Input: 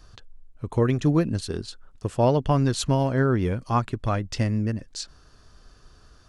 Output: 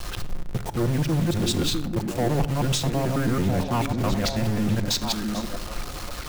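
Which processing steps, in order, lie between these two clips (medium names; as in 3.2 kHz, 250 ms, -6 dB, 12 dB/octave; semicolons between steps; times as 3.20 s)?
time reversed locally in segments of 109 ms; in parallel at -1.5 dB: peak limiter -19.5 dBFS, peak gain reduction 9 dB; on the sum: formant shift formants -2 st; reverse; compression 16:1, threshold -28 dBFS, peak gain reduction 15.5 dB; reverse; waveshaping leveller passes 3; bit crusher 6-bit; repeats whose band climbs or falls 654 ms, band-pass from 270 Hz, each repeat 1.4 oct, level -2 dB; reverberation RT60 0.90 s, pre-delay 6 ms, DRR 10 dB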